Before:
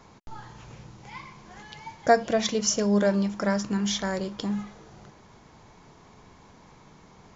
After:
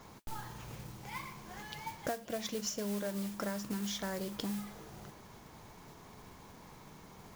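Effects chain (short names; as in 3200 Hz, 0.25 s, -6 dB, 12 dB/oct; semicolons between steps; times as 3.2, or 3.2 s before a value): compressor 10:1, threshold -33 dBFS, peak gain reduction 20 dB; modulation noise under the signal 12 dB; gain -1.5 dB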